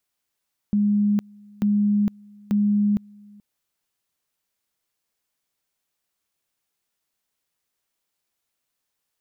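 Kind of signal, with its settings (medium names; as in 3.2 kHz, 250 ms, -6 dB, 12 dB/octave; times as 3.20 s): two-level tone 206 Hz -16.5 dBFS, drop 27.5 dB, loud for 0.46 s, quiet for 0.43 s, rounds 3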